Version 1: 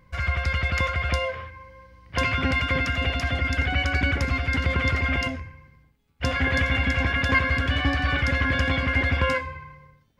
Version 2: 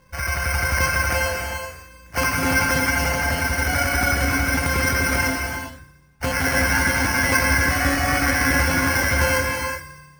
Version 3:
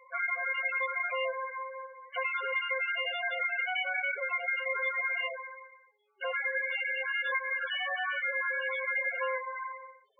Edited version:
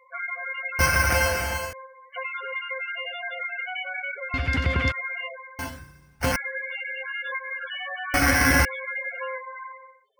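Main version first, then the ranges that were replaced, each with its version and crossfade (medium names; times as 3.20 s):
3
0.79–1.73 s: from 2
4.34–4.92 s: from 1
5.59–6.36 s: from 2
8.14–8.65 s: from 2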